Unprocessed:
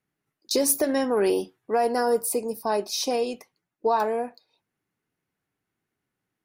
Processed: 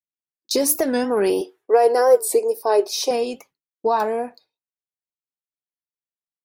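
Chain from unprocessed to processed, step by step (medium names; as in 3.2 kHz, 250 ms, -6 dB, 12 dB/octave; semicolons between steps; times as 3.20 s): expander -49 dBFS; 1.41–3.11 s: resonant low shelf 270 Hz -13.5 dB, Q 3; warped record 45 rpm, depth 160 cents; trim +3 dB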